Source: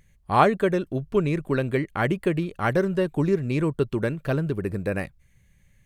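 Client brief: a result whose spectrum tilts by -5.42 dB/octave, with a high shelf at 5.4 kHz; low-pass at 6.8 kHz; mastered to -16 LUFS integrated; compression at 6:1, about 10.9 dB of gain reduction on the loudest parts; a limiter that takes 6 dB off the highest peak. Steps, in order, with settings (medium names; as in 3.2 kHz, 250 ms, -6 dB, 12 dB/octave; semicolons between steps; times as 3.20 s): low-pass 6.8 kHz; treble shelf 5.4 kHz +8.5 dB; compression 6:1, threshold -23 dBFS; trim +15 dB; peak limiter -4.5 dBFS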